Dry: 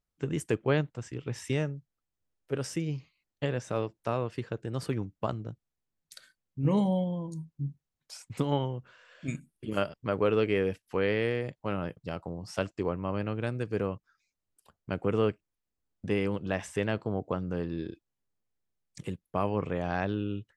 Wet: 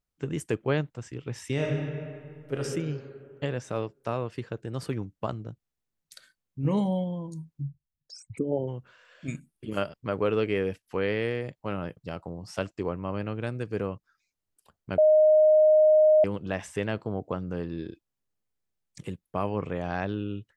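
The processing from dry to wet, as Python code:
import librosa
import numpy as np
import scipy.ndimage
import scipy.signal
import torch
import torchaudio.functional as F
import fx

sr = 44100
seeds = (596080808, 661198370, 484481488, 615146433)

y = fx.reverb_throw(x, sr, start_s=1.52, length_s=1.07, rt60_s=2.2, drr_db=-2.0)
y = fx.envelope_sharpen(y, sr, power=3.0, at=(7.61, 8.67), fade=0.02)
y = fx.edit(y, sr, fx.bleep(start_s=14.98, length_s=1.26, hz=618.0, db=-15.0), tone=tone)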